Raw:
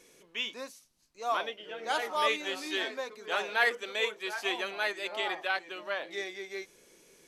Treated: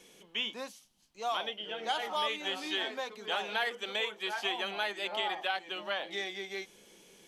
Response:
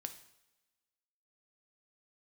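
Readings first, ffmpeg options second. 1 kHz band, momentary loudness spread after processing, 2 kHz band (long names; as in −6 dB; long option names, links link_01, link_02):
−1.5 dB, 7 LU, −4.0 dB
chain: -filter_complex "[0:a]equalizer=frequency=200:width_type=o:width=0.33:gain=9,equalizer=frequency=800:width_type=o:width=0.33:gain=7,equalizer=frequency=3150:width_type=o:width=0.33:gain=10,acrossover=split=750|2200|6400[link_01][link_02][link_03][link_04];[link_01]acompressor=threshold=-39dB:ratio=4[link_05];[link_02]acompressor=threshold=-35dB:ratio=4[link_06];[link_03]acompressor=threshold=-38dB:ratio=4[link_07];[link_04]acompressor=threshold=-56dB:ratio=4[link_08];[link_05][link_06][link_07][link_08]amix=inputs=4:normalize=0"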